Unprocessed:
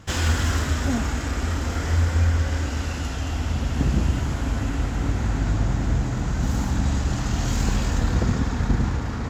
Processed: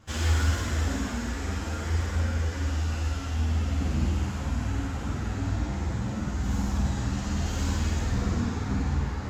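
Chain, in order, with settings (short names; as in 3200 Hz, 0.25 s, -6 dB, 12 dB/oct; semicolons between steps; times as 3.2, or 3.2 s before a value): on a send: flutter echo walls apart 8.7 m, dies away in 1.2 s; on the sum: ensemble effect; gain -5.5 dB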